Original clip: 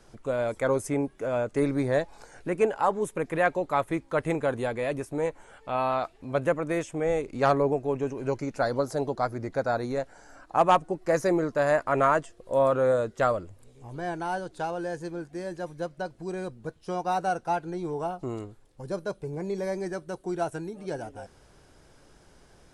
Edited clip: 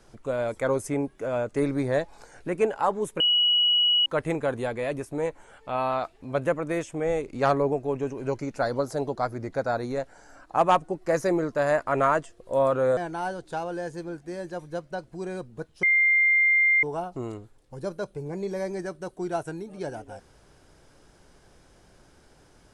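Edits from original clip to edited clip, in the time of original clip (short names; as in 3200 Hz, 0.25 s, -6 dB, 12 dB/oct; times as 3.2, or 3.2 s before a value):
3.2–4.06 bleep 2920 Hz -18 dBFS
12.97–14.04 cut
16.9–17.9 bleep 2100 Hz -17 dBFS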